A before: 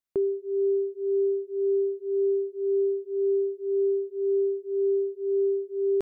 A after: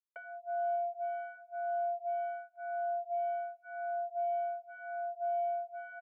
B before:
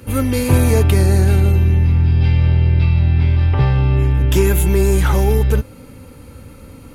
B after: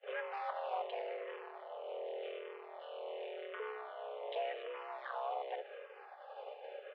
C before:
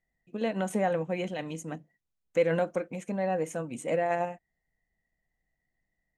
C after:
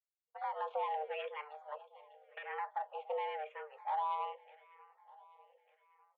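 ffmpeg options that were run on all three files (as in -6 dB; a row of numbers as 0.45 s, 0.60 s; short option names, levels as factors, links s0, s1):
-filter_complex "[0:a]agate=range=0.0224:threshold=0.0282:ratio=3:detection=peak,alimiter=limit=0.299:level=0:latency=1:release=155,acompressor=threshold=0.0316:ratio=2.5,asoftclip=type=tanh:threshold=0.0316,asplit=2[s0][s1];[s1]aecho=0:1:599|1198|1797|2396|2995:0.1|0.057|0.0325|0.0185|0.0106[s2];[s0][s2]amix=inputs=2:normalize=0,highpass=f=160:t=q:w=0.5412,highpass=f=160:t=q:w=1.307,lowpass=f=3100:t=q:w=0.5176,lowpass=f=3100:t=q:w=0.7071,lowpass=f=3100:t=q:w=1.932,afreqshift=300,asplit=2[s3][s4];[s4]afreqshift=-0.88[s5];[s3][s5]amix=inputs=2:normalize=1,volume=1.12"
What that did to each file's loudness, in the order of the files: -10.0 LU, -29.0 LU, -9.5 LU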